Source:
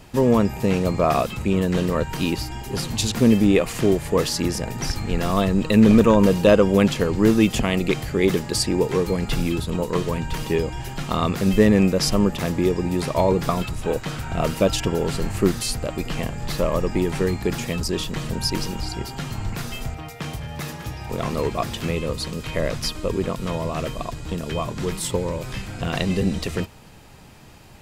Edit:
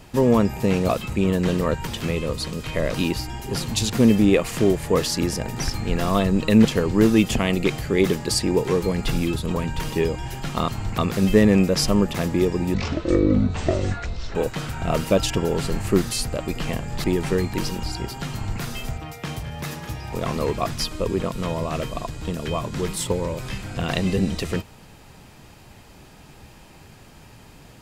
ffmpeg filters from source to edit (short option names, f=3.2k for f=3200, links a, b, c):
-filter_complex "[0:a]asplit=13[a][b][c][d][e][f][g][h][i][j][k][l][m];[a]atrim=end=0.892[n];[b]atrim=start=1.178:end=2.162[o];[c]atrim=start=21.668:end=22.742[p];[d]atrim=start=2.158:end=5.872[q];[e]atrim=start=6.888:end=9.802[r];[f]atrim=start=10.098:end=11.222[s];[g]atrim=start=19.278:end=19.582[t];[h]atrim=start=11.218:end=12.984[u];[i]atrim=start=12.98:end=13.85,asetpts=PTS-STARTPTS,asetrate=23814,aresample=44100[v];[j]atrim=start=13.846:end=16.542[w];[k]atrim=start=16.928:end=17.432[x];[l]atrim=start=18.508:end=21.672[y];[m]atrim=start=22.738[z];[n][o]acrossfade=d=0.004:c1=hsin:c2=hsin[aa];[aa][p]acrossfade=d=0.004:c1=hsin:c2=hsin[ab];[ab][q]acrossfade=d=0.004:c1=hsin:c2=hsin[ac];[ac][r]acrossfade=d=0.004:c1=hsin:c2=hsin[ad];[ad][s]acrossfade=d=0.004:c1=hsin:c2=hsin[ae];[ae][t]acrossfade=d=0.004:c1=hsin:c2=hsin[af];[af][u]acrossfade=d=0.004:c1=hsin:c2=hsin[ag];[ag][v]acrossfade=d=0.004:c1=hsin:c2=hsin[ah];[ah][w]acrossfade=d=0.004:c1=hsin:c2=hsin[ai];[ai][x]acrossfade=d=0.004:c1=hsin:c2=hsin[aj];[aj][y]acrossfade=d=0.004:c1=hsin:c2=hsin[ak];[ak][z]acrossfade=d=0.004:c1=hsin:c2=hsin"